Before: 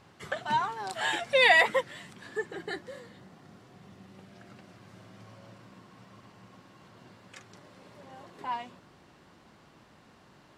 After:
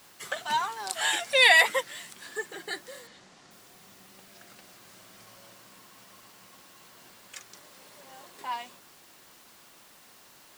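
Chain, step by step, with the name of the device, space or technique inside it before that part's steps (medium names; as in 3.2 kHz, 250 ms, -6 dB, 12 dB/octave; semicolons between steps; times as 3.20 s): turntable without a phono preamp (RIAA curve recording; white noise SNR 26 dB); 3.07–3.51 s: low-pass 7.4 kHz 24 dB/octave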